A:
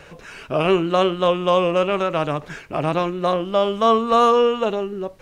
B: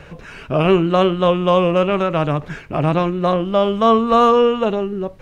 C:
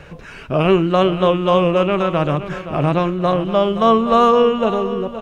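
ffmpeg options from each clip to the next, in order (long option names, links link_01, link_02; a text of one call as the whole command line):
ffmpeg -i in.wav -af "bass=frequency=250:gain=7,treble=frequency=4000:gain=-6,volume=2dB" out.wav
ffmpeg -i in.wav -af "aecho=1:1:520|1040|1560|2080:0.237|0.0925|0.0361|0.0141" out.wav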